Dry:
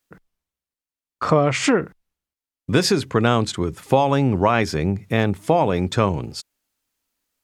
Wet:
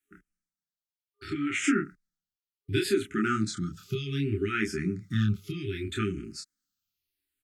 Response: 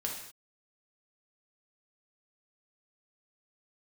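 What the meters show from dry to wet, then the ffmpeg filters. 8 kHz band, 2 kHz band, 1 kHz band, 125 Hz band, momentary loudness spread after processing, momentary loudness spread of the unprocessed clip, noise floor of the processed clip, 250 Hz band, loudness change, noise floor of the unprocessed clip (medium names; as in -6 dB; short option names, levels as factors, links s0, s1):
-8.5 dB, -6.5 dB, -16.5 dB, -9.0 dB, 11 LU, 11 LU, under -85 dBFS, -7.5 dB, -10.0 dB, under -85 dBFS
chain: -filter_complex "[0:a]afftfilt=real='re*(1-between(b*sr/4096,410,1200))':imag='im*(1-between(b*sr/4096,410,1200))':win_size=4096:overlap=0.75,aecho=1:1:10|28:0.316|0.708,asplit=2[s0][s1];[s1]afreqshift=-0.67[s2];[s0][s2]amix=inputs=2:normalize=1,volume=0.447"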